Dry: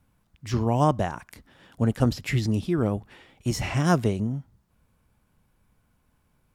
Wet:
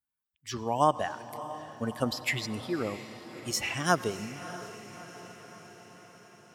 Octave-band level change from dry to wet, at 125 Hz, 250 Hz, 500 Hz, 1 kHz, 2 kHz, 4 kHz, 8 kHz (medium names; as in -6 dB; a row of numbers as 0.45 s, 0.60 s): -14.0 dB, -9.0 dB, -3.5 dB, -0.5 dB, +1.5 dB, +2.0 dB, +2.0 dB